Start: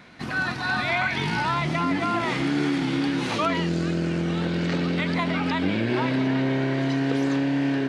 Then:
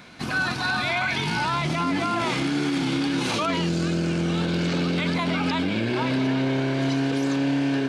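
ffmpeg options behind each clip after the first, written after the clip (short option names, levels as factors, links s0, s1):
-af "highshelf=f=4300:g=7.5,bandreject=f=1900:w=9,alimiter=limit=0.119:level=0:latency=1:release=15,volume=1.26"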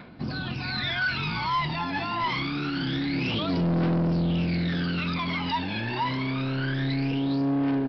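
-af "dynaudnorm=f=120:g=11:m=1.78,aphaser=in_gain=1:out_gain=1:delay=1.2:decay=0.78:speed=0.26:type=triangular,aresample=11025,asoftclip=type=tanh:threshold=0.237,aresample=44100,volume=0.355"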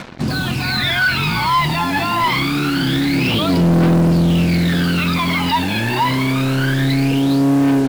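-filter_complex "[0:a]asplit=2[s0][s1];[s1]alimiter=level_in=1.58:limit=0.0631:level=0:latency=1,volume=0.631,volume=0.944[s2];[s0][s2]amix=inputs=2:normalize=0,acrusher=bits=5:mix=0:aa=0.5,volume=2.37"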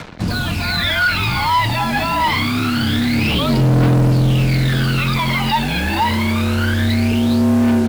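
-af "afreqshift=-40"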